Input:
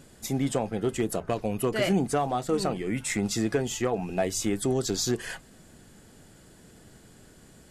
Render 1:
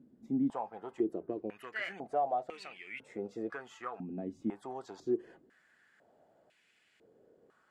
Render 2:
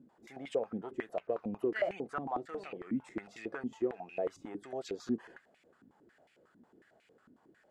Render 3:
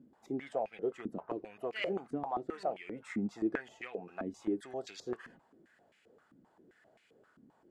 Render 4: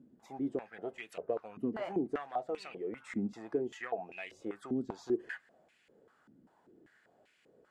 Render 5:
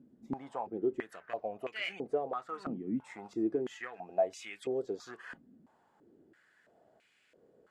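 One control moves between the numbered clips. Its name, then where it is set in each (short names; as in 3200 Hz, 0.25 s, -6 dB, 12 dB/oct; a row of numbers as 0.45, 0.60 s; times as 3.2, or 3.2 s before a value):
stepped band-pass, rate: 2, 11, 7.6, 5.1, 3 Hz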